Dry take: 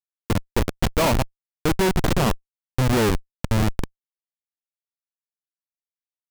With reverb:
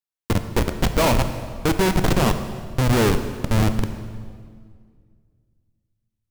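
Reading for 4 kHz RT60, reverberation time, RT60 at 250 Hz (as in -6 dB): 1.6 s, 2.0 s, 2.5 s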